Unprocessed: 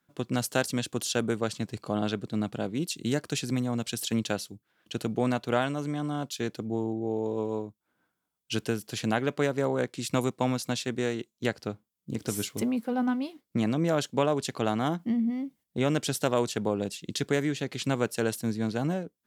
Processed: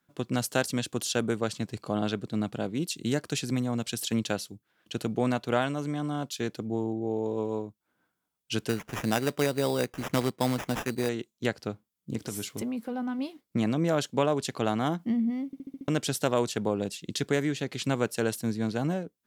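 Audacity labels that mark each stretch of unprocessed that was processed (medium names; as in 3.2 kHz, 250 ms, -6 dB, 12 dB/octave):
8.690000	11.090000	sample-rate reducer 4.3 kHz
12.200000	13.190000	compression 2.5:1, threshold -31 dBFS
15.460000	15.460000	stutter in place 0.07 s, 6 plays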